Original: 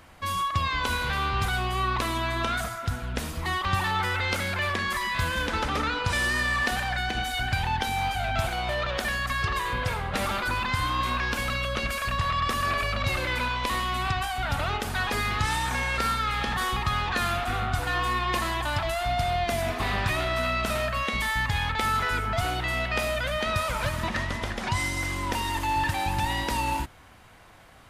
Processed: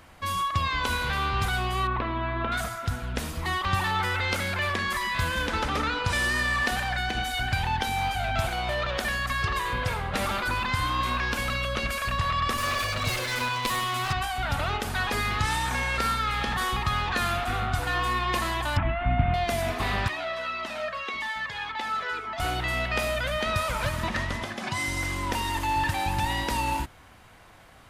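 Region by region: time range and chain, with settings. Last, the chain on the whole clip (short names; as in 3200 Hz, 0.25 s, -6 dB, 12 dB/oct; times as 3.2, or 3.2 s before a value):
1.87–2.52 Gaussian blur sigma 3.2 samples + short-mantissa float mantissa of 8-bit
12.57–14.13 minimum comb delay 8.1 ms + high shelf 5000 Hz +6 dB
18.77–19.34 steep low-pass 2700 Hz + resonant low shelf 340 Hz +6.5 dB, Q 3
20.08–22.4 three-band isolator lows -23 dB, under 220 Hz, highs -15 dB, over 6300 Hz + cascading flanger falling 1.8 Hz
24.43–24.88 HPF 140 Hz + notch comb 470 Hz
whole clip: dry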